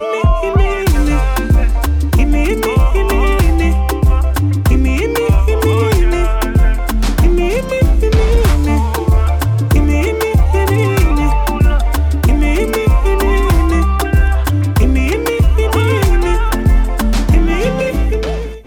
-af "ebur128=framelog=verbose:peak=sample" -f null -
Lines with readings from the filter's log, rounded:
Integrated loudness:
  I:         -13.9 LUFS
  Threshold: -23.9 LUFS
Loudness range:
  LRA:         0.6 LU
  Threshold: -33.7 LUFS
  LRA low:   -14.0 LUFS
  LRA high:  -13.4 LUFS
Sample peak:
  Peak:       -3.1 dBFS